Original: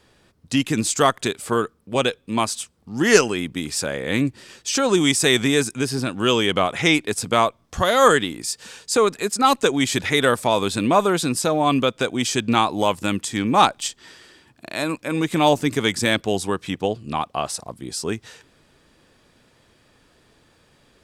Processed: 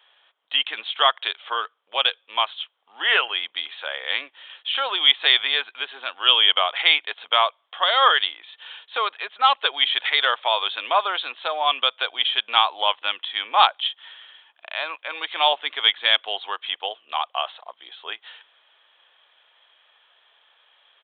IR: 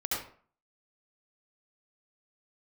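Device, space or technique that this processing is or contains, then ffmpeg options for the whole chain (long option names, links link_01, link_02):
musical greeting card: -af "aresample=8000,aresample=44100,highpass=frequency=710:width=0.5412,highpass=frequency=710:width=1.3066,equalizer=frequency=3200:width_type=o:width=0.26:gain=11"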